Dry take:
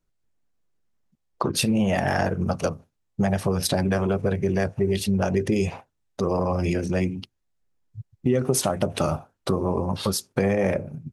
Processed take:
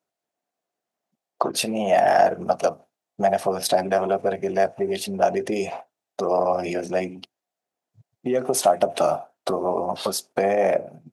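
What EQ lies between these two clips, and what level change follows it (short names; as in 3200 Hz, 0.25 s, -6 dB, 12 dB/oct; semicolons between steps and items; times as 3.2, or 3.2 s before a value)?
HPF 300 Hz 12 dB/oct; bell 690 Hz +12.5 dB 0.44 oct; 0.0 dB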